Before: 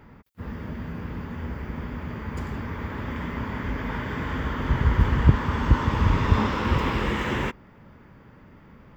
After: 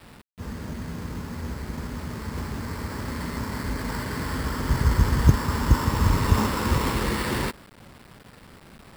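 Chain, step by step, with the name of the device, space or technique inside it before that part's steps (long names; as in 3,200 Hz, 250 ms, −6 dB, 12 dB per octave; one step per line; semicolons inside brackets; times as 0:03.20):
early 8-bit sampler (sample-rate reduction 6,400 Hz, jitter 0%; bit reduction 8 bits)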